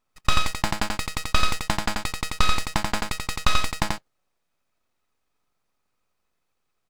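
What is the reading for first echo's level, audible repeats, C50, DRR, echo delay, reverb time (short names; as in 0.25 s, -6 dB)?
-3.5 dB, 1, none, none, 86 ms, none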